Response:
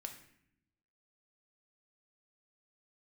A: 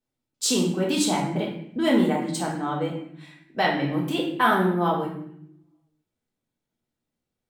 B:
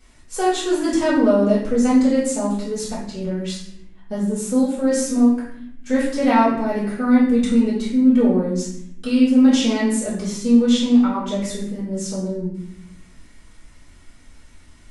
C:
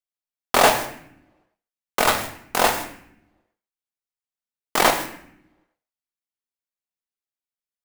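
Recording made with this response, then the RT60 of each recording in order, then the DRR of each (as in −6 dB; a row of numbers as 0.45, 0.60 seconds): C; 0.70, 0.70, 0.70 seconds; −3.0, −11.0, 4.0 decibels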